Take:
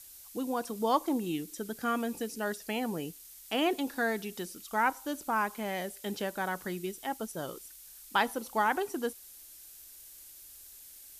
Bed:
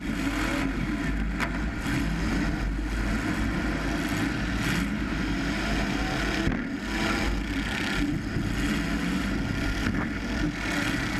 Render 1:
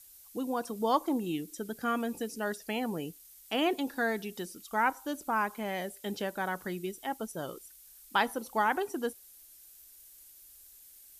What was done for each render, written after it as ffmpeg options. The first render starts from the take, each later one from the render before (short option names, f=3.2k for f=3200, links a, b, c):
-af "afftdn=nr=6:nf=-52"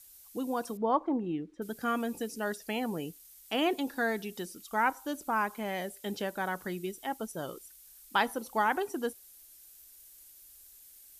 -filter_complex "[0:a]asettb=1/sr,asplit=3[a][b][c];[a]atrim=end=0.774[d];[b]atrim=start=0.77:end=1.62,asetpts=PTS-STARTPTS,afade=t=in:d=0.004:c=qsin,afade=t=out:st=0.846:d=0.004:c=qsin,lowpass=1.6k[e];[c]atrim=start=1.616[f];[d][e]acrossfade=d=0.004:c1=hsin:c2=qsin[g];[g][f]acrossfade=d=0.004:c1=qsin:c2=hsin"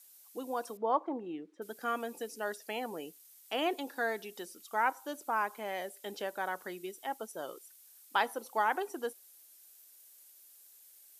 -af "highpass=500,tiltshelf=f=640:g=3.5"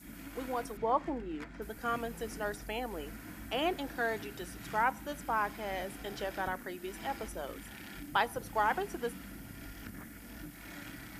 -filter_complex "[1:a]volume=-19.5dB[a];[0:a][a]amix=inputs=2:normalize=0"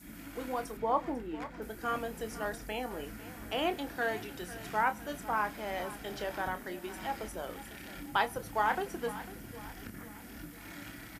-filter_complex "[0:a]asplit=2[a][b];[b]adelay=28,volume=-10.5dB[c];[a][c]amix=inputs=2:normalize=0,aecho=1:1:498|996|1494|1992:0.168|0.0823|0.0403|0.0198"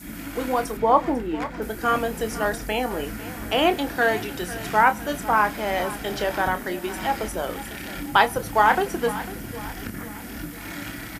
-af "volume=12dB"